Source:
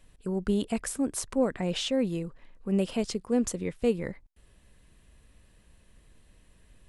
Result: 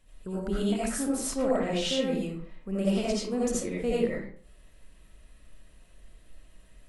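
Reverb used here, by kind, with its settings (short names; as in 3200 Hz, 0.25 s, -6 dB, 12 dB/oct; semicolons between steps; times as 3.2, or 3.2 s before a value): digital reverb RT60 0.48 s, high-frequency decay 0.7×, pre-delay 40 ms, DRR -7.5 dB; gain -5.5 dB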